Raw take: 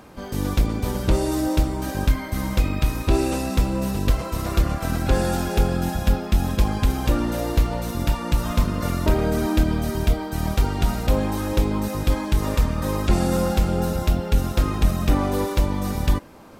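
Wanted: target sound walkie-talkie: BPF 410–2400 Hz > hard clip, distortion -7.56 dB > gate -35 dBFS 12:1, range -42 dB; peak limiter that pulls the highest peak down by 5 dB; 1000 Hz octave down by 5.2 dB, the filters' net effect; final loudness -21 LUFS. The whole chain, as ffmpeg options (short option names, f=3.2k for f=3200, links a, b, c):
-af "equalizer=f=1k:t=o:g=-6.5,alimiter=limit=-13dB:level=0:latency=1,highpass=410,lowpass=2.4k,asoftclip=type=hard:threshold=-33.5dB,agate=range=-42dB:threshold=-35dB:ratio=12,volume=20dB"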